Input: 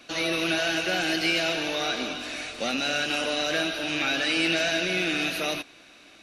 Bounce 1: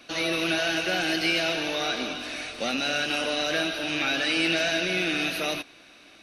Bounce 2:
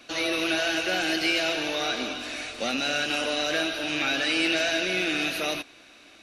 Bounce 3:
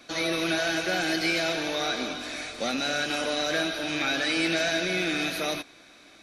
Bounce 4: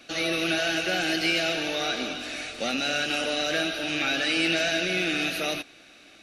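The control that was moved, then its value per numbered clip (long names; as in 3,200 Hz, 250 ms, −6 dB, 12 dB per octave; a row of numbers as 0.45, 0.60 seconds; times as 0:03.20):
notch filter, centre frequency: 7,200, 170, 2,800, 1,000 Hertz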